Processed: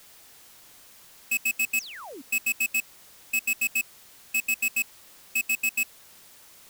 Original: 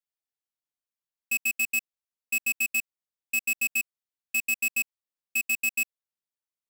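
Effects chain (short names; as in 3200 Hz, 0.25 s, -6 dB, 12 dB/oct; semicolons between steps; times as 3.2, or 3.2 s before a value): zero-crossing step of -42 dBFS; painted sound fall, 1.76–2.22, 240–8600 Hz -41 dBFS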